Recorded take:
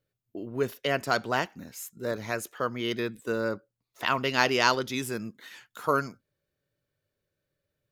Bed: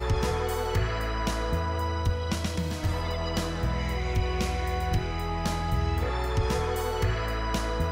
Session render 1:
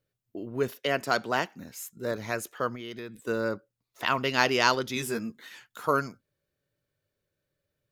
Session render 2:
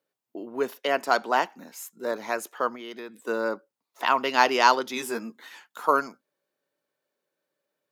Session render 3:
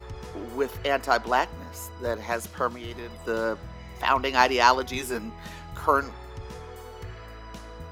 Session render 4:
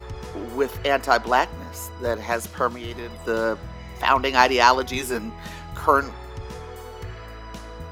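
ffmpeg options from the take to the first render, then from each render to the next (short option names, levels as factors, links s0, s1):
-filter_complex "[0:a]asettb=1/sr,asplit=3[s0][s1][s2];[s0]atrim=end=0.684[s3];[s1]atrim=start=0.68:end=1.6,asetpts=PTS-STARTPTS,afade=t=in:d=0.004:c=qsin,afade=t=out:st=0.916:d=0.004:c=qsin,highpass=140[s4];[s2]atrim=start=1.596[s5];[s3][s4]acrossfade=d=0.004:c1=hsin:c2=qsin[s6];[s6][s5]acrossfade=d=0.004:c1=qsin:c2=hsin,asettb=1/sr,asplit=3[s7][s8][s9];[s7]atrim=end=2.754[s10];[s8]atrim=start=2.75:end=3.23,asetpts=PTS-STARTPTS,afade=t=in:d=0.004:c=qsin,afade=t=out:st=0.476:d=0.004:c=qsin,acompressor=threshold=0.0126:ratio=3:attack=3.2:release=140:knee=1:detection=peak[s11];[s9]atrim=start=3.226[s12];[s10][s11]acrossfade=d=0.004:c1=hsin:c2=qsin[s13];[s13][s12]acrossfade=d=0.004:c1=qsin:c2=hsin,asettb=1/sr,asplit=3[s14][s15][s16];[s14]atrim=end=4.954[s17];[s15]atrim=start=4.95:end=5.41,asetpts=PTS-STARTPTS,afade=t=in:d=0.004:c=qsin,afade=t=out:st=0.456:d=0.004:c=qsin,asplit=2[s18][s19];[s19]adelay=13,volume=0.631[s20];[s18][s20]amix=inputs=2:normalize=0,atrim=end_sample=20286[s21];[s16]atrim=start=5.406[s22];[s17][s21]acrossfade=d=0.004:c1=hsin:c2=qsin[s23];[s23][s22]acrossfade=d=0.004:c1=qsin:c2=hsin"
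-af "highpass=f=220:w=0.5412,highpass=f=220:w=1.3066,equalizer=f=890:t=o:w=0.86:g=8.5"
-filter_complex "[1:a]volume=0.224[s0];[0:a][s0]amix=inputs=2:normalize=0"
-af "volume=1.58,alimiter=limit=0.891:level=0:latency=1"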